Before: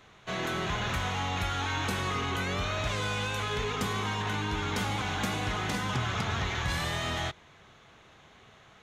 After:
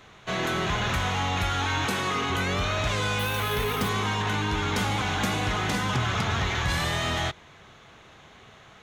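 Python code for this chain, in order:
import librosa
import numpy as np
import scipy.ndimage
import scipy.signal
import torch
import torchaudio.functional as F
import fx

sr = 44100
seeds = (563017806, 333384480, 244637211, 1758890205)

p1 = fx.highpass(x, sr, hz=150.0, slope=12, at=(1.85, 2.3))
p2 = np.clip(p1, -10.0 ** (-29.0 / 20.0), 10.0 ** (-29.0 / 20.0))
p3 = p1 + (p2 * 10.0 ** (-9.0 / 20.0))
p4 = fx.resample_bad(p3, sr, factor=3, down='filtered', up='hold', at=(3.19, 3.89))
y = p4 * 10.0 ** (2.5 / 20.0)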